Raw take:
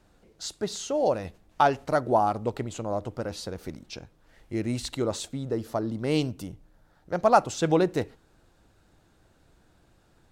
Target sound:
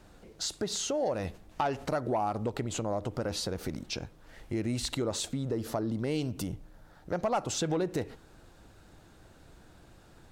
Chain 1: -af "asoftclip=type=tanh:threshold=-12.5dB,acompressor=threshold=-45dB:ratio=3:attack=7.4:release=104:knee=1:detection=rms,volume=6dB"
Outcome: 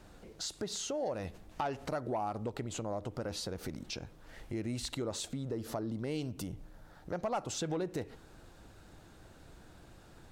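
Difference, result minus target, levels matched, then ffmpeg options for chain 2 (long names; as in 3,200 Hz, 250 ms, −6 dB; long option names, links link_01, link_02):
downward compressor: peak gain reduction +5.5 dB
-af "asoftclip=type=tanh:threshold=-12.5dB,acompressor=threshold=-37dB:ratio=3:attack=7.4:release=104:knee=1:detection=rms,volume=6dB"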